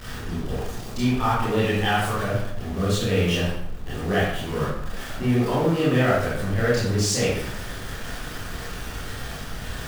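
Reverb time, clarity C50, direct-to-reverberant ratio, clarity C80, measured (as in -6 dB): 0.80 s, -1.0 dB, -9.5 dB, 3.5 dB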